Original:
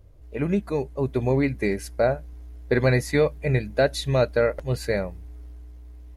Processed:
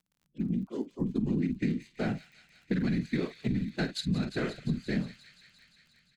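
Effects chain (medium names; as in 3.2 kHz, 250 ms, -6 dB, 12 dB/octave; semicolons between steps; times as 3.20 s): local Wiener filter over 25 samples; spectral noise reduction 29 dB; doubling 45 ms -12 dB; whisper effect; FFT filter 250 Hz 0 dB, 570 Hz -25 dB, 1.5 kHz -11 dB, 7.7 kHz -3 dB, 11 kHz -13 dB; peak limiter -22.5 dBFS, peak gain reduction 13.5 dB; resonant low shelf 130 Hz -9.5 dB, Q 1.5; band-stop 5.6 kHz, Q 13; on a send: feedback echo behind a high-pass 175 ms, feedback 77%, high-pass 2.8 kHz, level -10 dB; on the sum: compression, threshold -30 dBFS, peak gain reduction 6 dB; crackle 27 per s -55 dBFS; level rider gain up to 5 dB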